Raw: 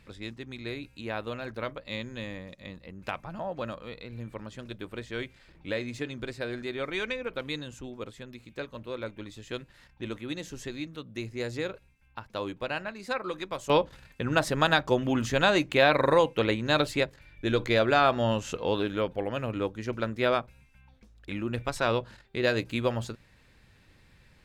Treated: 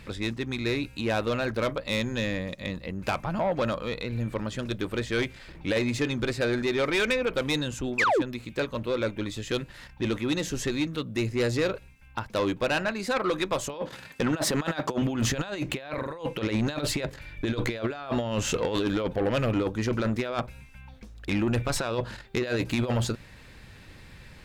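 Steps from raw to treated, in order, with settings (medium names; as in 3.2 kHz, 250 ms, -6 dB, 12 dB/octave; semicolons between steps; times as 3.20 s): 13.74–15.02 s: high-pass 170 Hz 12 dB/octave; compressor with a negative ratio -30 dBFS, ratio -0.5; 7.98–8.22 s: painted sound fall 260–2700 Hz -26 dBFS; saturation -27 dBFS, distortion -12 dB; trim +7.5 dB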